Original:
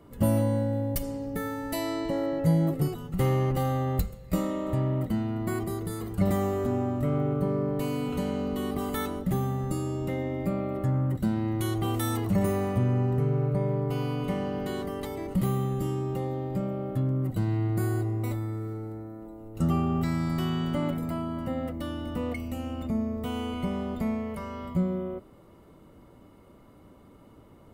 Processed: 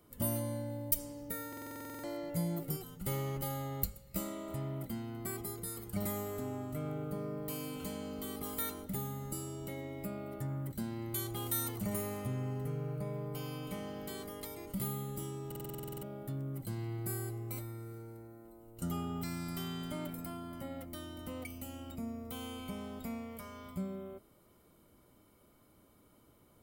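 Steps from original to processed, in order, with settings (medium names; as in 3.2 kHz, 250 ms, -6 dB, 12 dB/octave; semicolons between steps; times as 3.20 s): pre-emphasis filter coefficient 0.8; speed mistake 24 fps film run at 25 fps; buffer glitch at 1.48/15.47 s, samples 2048, times 11; trim +1.5 dB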